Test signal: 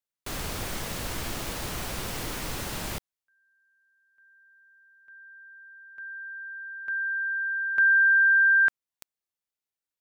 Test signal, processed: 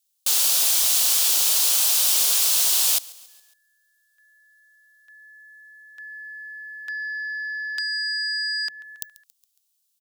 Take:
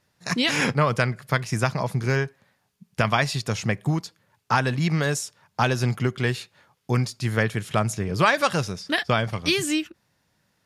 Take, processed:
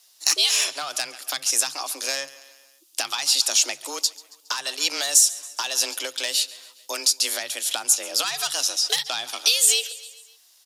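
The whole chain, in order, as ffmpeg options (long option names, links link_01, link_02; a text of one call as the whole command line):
ffmpeg -i in.wav -filter_complex "[0:a]asplit=2[link_01][link_02];[link_02]aecho=0:1:138|276|414|552:0.075|0.0405|0.0219|0.0118[link_03];[link_01][link_03]amix=inputs=2:normalize=0,alimiter=limit=-13dB:level=0:latency=1:release=467,highpass=490,asplit=2[link_04][link_05];[link_05]aeval=exprs='0.316*sin(PI/2*2.51*val(0)/0.316)':channel_layout=same,volume=-7dB[link_06];[link_04][link_06]amix=inputs=2:normalize=0,afreqshift=140,acompressor=threshold=-19dB:ratio=6:attack=11:release=613:knee=1:detection=peak,aexciter=amount=8.1:drive=2.5:freq=2900,volume=-8dB" out.wav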